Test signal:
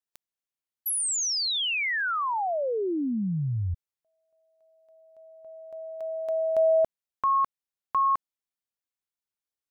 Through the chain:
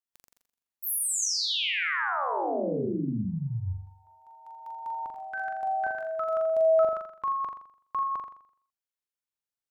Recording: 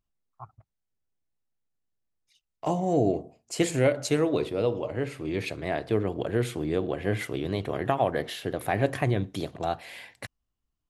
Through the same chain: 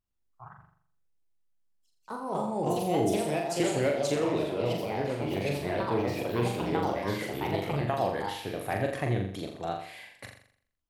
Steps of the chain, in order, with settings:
delay with pitch and tempo change per echo 109 ms, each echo +3 semitones, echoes 2
flutter between parallel walls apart 7.2 metres, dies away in 0.58 s
level −5.5 dB

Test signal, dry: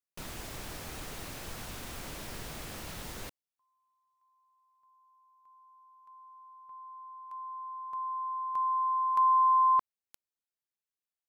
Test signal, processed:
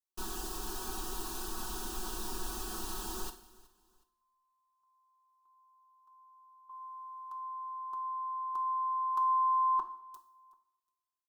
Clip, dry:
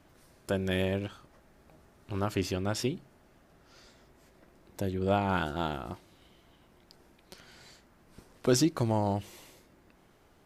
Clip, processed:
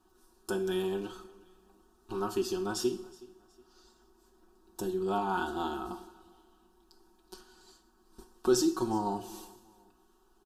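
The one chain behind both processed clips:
noise gate −52 dBFS, range −8 dB
phaser with its sweep stopped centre 570 Hz, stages 6
in parallel at +2.5 dB: downward compressor, threshold −41 dBFS
on the sum: comb filter 5.4 ms, depth 83%
on a send: repeating echo 369 ms, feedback 34%, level −22.5 dB
on the sum: coupled-rooms reverb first 0.56 s, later 1.6 s, from −19 dB, DRR 7.5 dB
level −4.5 dB

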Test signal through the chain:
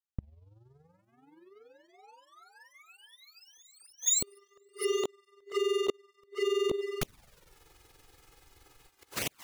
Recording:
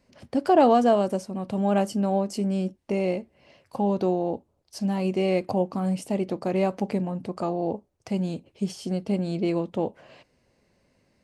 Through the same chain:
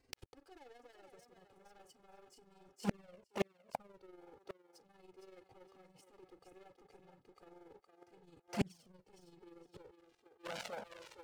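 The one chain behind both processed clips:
leveller curve on the samples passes 5
reversed playback
downward compressor 8 to 1, threshold −24 dBFS
reversed playback
amplitude modulation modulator 21 Hz, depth 45%
on a send: feedback echo with a high-pass in the loop 463 ms, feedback 28%, high-pass 340 Hz, level −6 dB
on the sum: gate with flip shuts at −26 dBFS, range −37 dB
flanger swept by the level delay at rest 2.6 ms, full sweep at −34.5 dBFS
level +8.5 dB

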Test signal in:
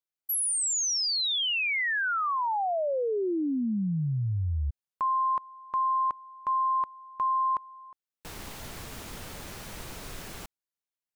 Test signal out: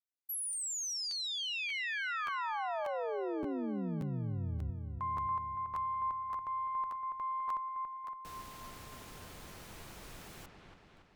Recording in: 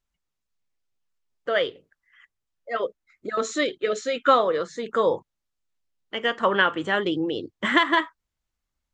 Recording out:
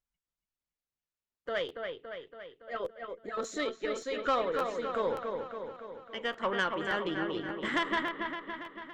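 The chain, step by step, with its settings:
tube saturation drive 12 dB, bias 0.4
delay with a low-pass on its return 282 ms, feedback 60%, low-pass 3,200 Hz, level −5 dB
regular buffer underruns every 0.58 s, samples 512, repeat, from 0:00.52
level −8.5 dB

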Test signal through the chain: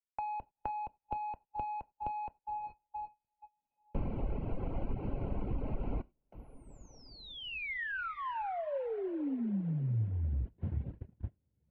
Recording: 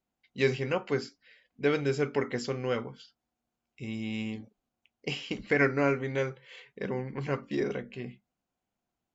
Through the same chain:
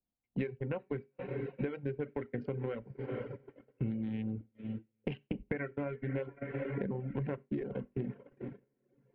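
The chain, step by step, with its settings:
adaptive Wiener filter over 25 samples
feedback delay with all-pass diffusion 458 ms, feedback 53%, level −15.5 dB
downward compressor 12 to 1, threshold −42 dBFS
noise gate −48 dBFS, range −29 dB
low-pass filter 2,700 Hz 24 dB per octave
low-shelf EQ 420 Hz +5.5 dB
notch filter 1,200 Hz, Q 7.5
reverb whose tail is shaped and stops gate 120 ms falling, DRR 10 dB
reverb reduction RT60 0.73 s
low-shelf EQ 64 Hz +6.5 dB
multiband upward and downward compressor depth 40%
level +6 dB

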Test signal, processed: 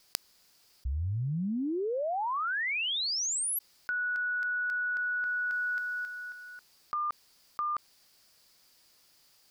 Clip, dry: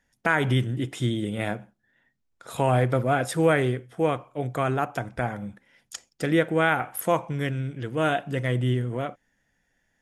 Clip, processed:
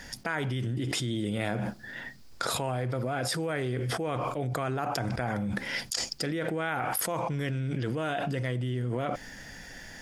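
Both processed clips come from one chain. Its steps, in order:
parametric band 4,800 Hz +11.5 dB 0.38 octaves
envelope flattener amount 100%
level −14 dB

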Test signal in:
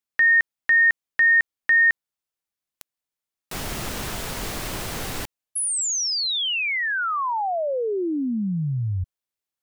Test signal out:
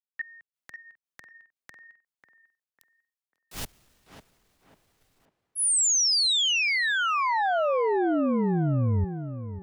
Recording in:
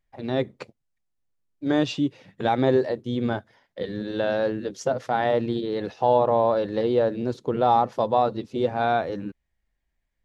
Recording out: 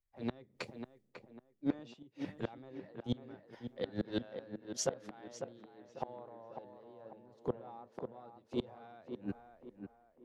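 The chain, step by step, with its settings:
transient designer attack −10 dB, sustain +4 dB
gate with flip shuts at −21 dBFS, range −28 dB
on a send: tape delay 547 ms, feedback 54%, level −4.5 dB, low-pass 2,100 Hz
on the sum: multiband upward and downward expander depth 40%
level −1.5 dB

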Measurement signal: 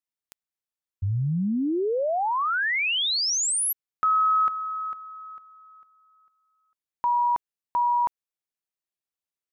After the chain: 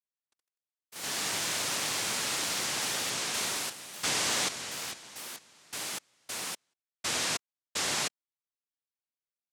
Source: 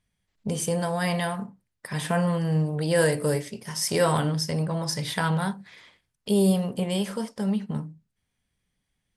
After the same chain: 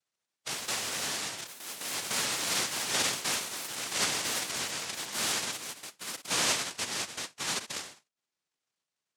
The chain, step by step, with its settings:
cochlear-implant simulation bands 1
delay with pitch and tempo change per echo 137 ms, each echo +4 semitones, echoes 3, each echo −6 dB
level −8.5 dB

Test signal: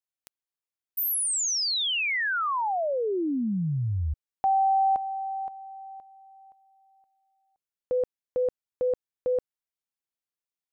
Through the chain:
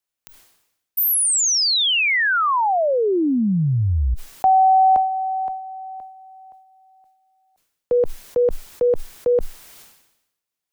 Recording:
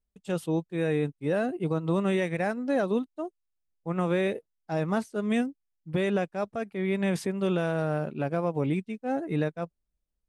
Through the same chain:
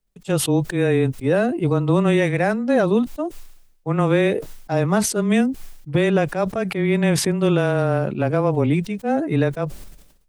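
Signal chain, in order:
frequency shifter −15 Hz
level that may fall only so fast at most 66 dB per second
level +8.5 dB

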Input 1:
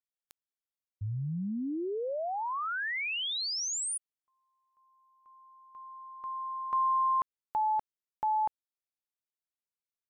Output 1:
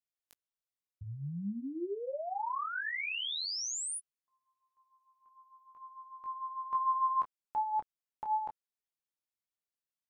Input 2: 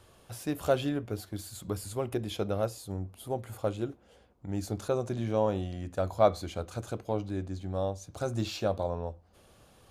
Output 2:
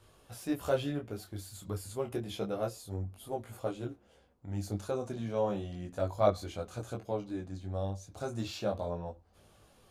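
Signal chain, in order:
micro pitch shift up and down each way 11 cents

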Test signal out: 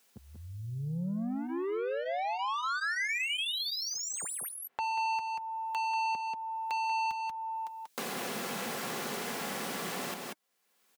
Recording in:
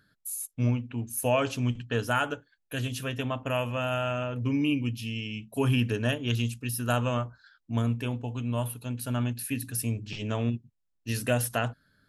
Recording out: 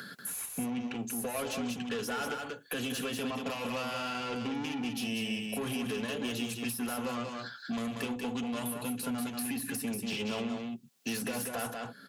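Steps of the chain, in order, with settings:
high-pass filter 190 Hz 24 dB per octave
in parallel at −1.5 dB: downward compressor, threshold −41 dBFS
on the sum: brickwall limiter −23 dBFS
soft clipping −33.5 dBFS
notch comb filter 310 Hz
on a send: single-tap delay 187 ms −5.5 dB
on the sum: multiband upward and downward compressor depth 70%
level +3 dB

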